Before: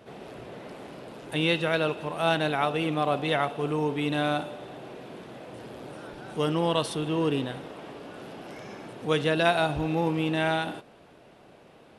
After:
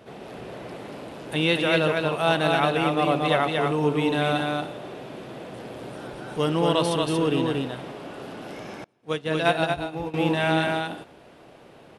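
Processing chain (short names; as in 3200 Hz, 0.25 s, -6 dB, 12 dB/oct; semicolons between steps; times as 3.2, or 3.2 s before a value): echo 0.232 s -3 dB; 8.84–10.14 upward expander 2.5:1, over -39 dBFS; gain +2.5 dB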